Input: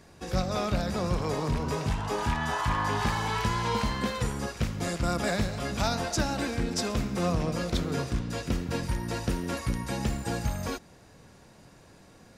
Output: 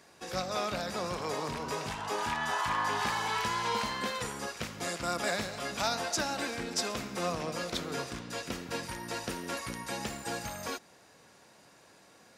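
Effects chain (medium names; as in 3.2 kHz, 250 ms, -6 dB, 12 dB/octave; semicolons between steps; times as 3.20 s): high-pass 600 Hz 6 dB/octave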